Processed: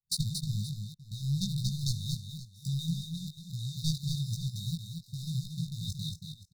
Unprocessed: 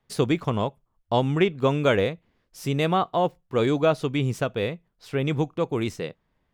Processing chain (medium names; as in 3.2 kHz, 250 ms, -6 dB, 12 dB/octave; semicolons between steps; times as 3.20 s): rattle on loud lows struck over -37 dBFS, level -21 dBFS; dynamic bell 3.7 kHz, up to +5 dB, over -48 dBFS, Q 2.5; level held to a coarse grid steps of 18 dB; waveshaping leveller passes 3; chorus 1.1 Hz, delay 16 ms, depth 5.1 ms; brick-wall FIR band-stop 200–3600 Hz; multi-tap echo 230/525 ms -6/-17 dB